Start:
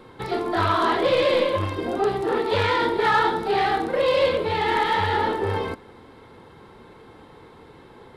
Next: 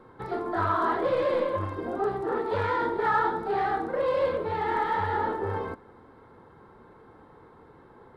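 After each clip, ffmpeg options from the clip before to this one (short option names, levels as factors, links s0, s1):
-af "highshelf=f=2000:t=q:w=1.5:g=-9,volume=0.501"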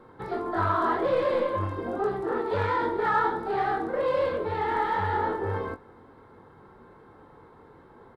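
-filter_complex "[0:a]asplit=2[s0][s1];[s1]adelay=21,volume=0.376[s2];[s0][s2]amix=inputs=2:normalize=0"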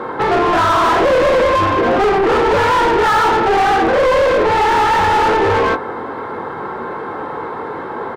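-filter_complex "[0:a]asplit=2[s0][s1];[s1]highpass=f=720:p=1,volume=39.8,asoftclip=type=tanh:threshold=0.224[s2];[s0][s2]amix=inputs=2:normalize=0,lowpass=f=1700:p=1,volume=0.501,volume=2.24"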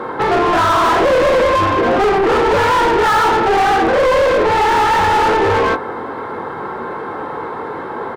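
-af "highshelf=f=8000:g=4"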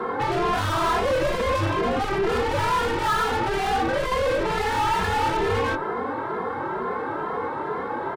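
-filter_complex "[0:a]acrossover=split=190|2300[s0][s1][s2];[s1]alimiter=limit=0.158:level=0:latency=1[s3];[s2]aeval=exprs='(tanh(25.1*val(0)+0.55)-tanh(0.55))/25.1':c=same[s4];[s0][s3][s4]amix=inputs=3:normalize=0,asplit=2[s5][s6];[s6]adelay=2.5,afreqshift=2.2[s7];[s5][s7]amix=inputs=2:normalize=1"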